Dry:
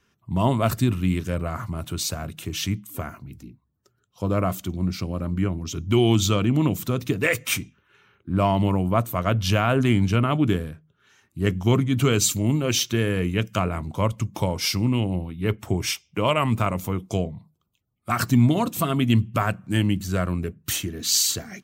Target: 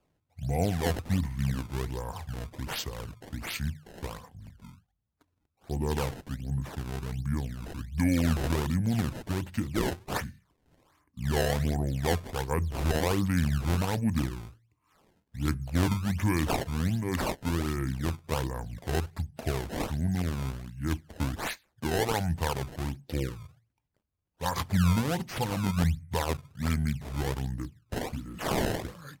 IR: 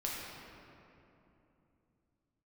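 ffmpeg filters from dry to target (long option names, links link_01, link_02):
-af "acrusher=samples=16:mix=1:aa=0.000001:lfo=1:lforange=25.6:lforate=1.8,asetrate=32667,aresample=44100,volume=-7dB"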